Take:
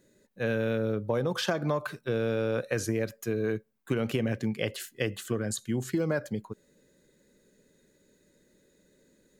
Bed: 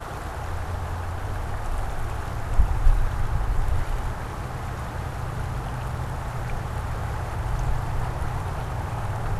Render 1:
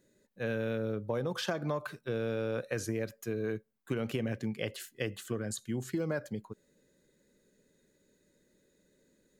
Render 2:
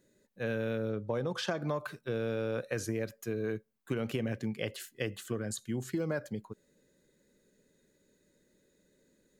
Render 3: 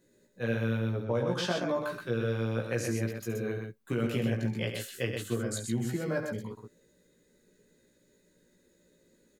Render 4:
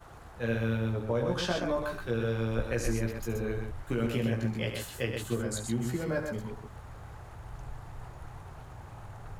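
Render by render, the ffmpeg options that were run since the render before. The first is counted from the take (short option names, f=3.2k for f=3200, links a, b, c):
-af "volume=-5dB"
-filter_complex "[0:a]asettb=1/sr,asplit=3[a][b][c];[a]atrim=end=0.904[d];[b]atrim=start=0.9:end=1.6,asetpts=PTS-STARTPTS,afade=t=in:d=0.004:c=qsin,afade=t=out:st=0.696:d=0.004:c=qsin,lowpass=9.2k[e];[c]atrim=start=1.596[f];[d][e]acrossfade=d=0.004:c1=hsin:c2=qsin[g];[g][f]acrossfade=d=0.004:c1=qsin:c2=hsin"
-filter_complex "[0:a]asplit=2[a][b];[b]adelay=17,volume=-2dB[c];[a][c]amix=inputs=2:normalize=0,aecho=1:1:69.97|125.4:0.282|0.562"
-filter_complex "[1:a]volume=-17dB[a];[0:a][a]amix=inputs=2:normalize=0"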